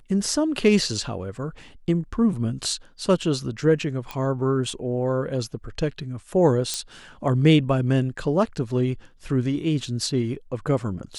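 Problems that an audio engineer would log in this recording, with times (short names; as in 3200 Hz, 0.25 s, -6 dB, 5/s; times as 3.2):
4.11 pop -16 dBFS
6.74 pop -11 dBFS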